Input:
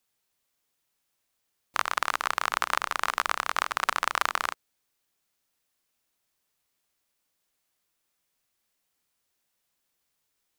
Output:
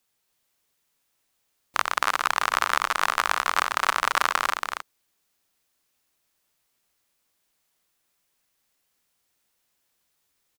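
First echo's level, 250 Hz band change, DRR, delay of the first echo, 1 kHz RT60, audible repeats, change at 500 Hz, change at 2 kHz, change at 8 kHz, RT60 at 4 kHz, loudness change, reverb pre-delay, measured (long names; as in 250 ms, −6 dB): −4.5 dB, +4.0 dB, no reverb audible, 280 ms, no reverb audible, 1, +4.0 dB, +4.5 dB, +4.5 dB, no reverb audible, +4.0 dB, no reverb audible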